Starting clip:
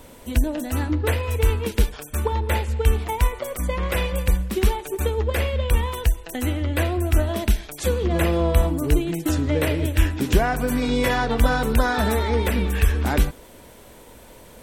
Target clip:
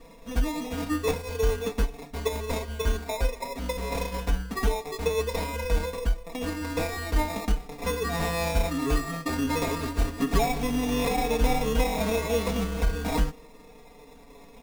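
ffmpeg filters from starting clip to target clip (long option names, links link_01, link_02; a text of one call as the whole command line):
ffmpeg -i in.wav -af "acrusher=samples=29:mix=1:aa=0.000001,flanger=delay=6:depth=1.6:regen=30:speed=0.16:shape=triangular,aecho=1:1:4.3:0.97,volume=-3.5dB" out.wav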